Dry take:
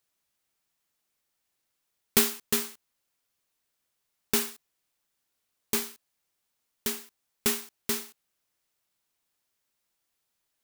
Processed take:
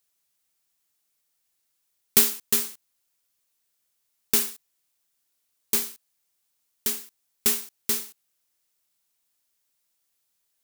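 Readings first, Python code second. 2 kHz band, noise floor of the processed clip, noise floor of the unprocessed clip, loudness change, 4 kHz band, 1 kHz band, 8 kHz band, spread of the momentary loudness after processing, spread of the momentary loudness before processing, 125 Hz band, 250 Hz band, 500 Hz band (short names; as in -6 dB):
-0.5 dB, -75 dBFS, -80 dBFS, +5.0 dB, +2.0 dB, -2.0 dB, +5.0 dB, 14 LU, 14 LU, -2.5 dB, -2.5 dB, -2.5 dB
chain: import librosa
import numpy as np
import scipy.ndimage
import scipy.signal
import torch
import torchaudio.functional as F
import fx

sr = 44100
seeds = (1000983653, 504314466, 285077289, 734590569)

y = fx.high_shelf(x, sr, hz=3900.0, db=9.0)
y = F.gain(torch.from_numpy(y), -2.5).numpy()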